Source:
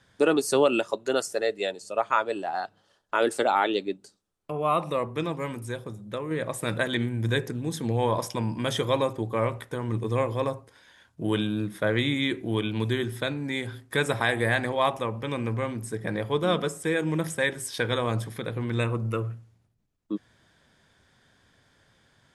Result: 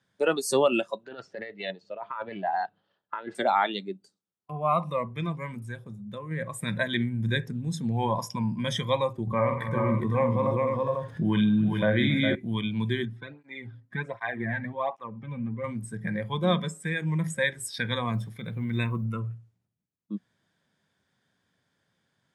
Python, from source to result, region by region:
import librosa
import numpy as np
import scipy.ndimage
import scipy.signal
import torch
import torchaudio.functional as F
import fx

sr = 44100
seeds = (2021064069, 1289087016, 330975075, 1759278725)

y = fx.chain(x, sr, fx.lowpass(hz=3900.0, slope=24),
    fx.over_compress(threshold_db=-29.0, ratio=-1.0),
    fx.doppler_dist(depth_ms=0.1), at=(1.03, 3.35))
y = fx.chain(y, sr, fx.high_shelf(hz=3800.0, db=-9.5),
    fx.echo_multitap(ms=(47, 137, 197, 275, 410, 493), db=(-8.0, -16.5, -19.5, -15.0, -4.0, -8.0)),
    fx.env_flatten(amount_pct=50), at=(9.27, 12.35))
y = fx.chain(y, sr, fx.spacing_loss(db_at_10k=22),
    fx.flanger_cancel(hz=1.3, depth_ms=3.0), at=(13.05, 15.64))
y = fx.chain(y, sr, fx.gate_hold(open_db=-29.0, close_db=-34.0, hold_ms=71.0, range_db=-21, attack_ms=1.4, release_ms=100.0),
    fx.quant_float(bits=6), at=(18.11, 19.05))
y = scipy.signal.sosfilt(scipy.signal.butter(2, 100.0, 'highpass', fs=sr, output='sos'), y)
y = fx.noise_reduce_blind(y, sr, reduce_db=12)
y = fx.peak_eq(y, sr, hz=180.0, db=5.5, octaves=0.6)